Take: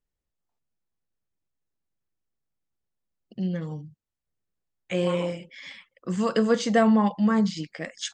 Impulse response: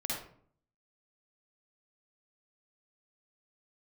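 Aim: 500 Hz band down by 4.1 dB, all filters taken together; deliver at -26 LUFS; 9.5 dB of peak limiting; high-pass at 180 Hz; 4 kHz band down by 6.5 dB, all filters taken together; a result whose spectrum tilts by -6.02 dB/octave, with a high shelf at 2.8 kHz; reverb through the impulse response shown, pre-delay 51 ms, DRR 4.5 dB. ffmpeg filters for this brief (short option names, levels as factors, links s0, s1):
-filter_complex "[0:a]highpass=180,equalizer=f=500:t=o:g=-4.5,highshelf=f=2800:g=-3.5,equalizer=f=4000:t=o:g=-6,alimiter=limit=0.0944:level=0:latency=1,asplit=2[s0][s1];[1:a]atrim=start_sample=2205,adelay=51[s2];[s1][s2]afir=irnorm=-1:irlink=0,volume=0.398[s3];[s0][s3]amix=inputs=2:normalize=0,volume=1.5"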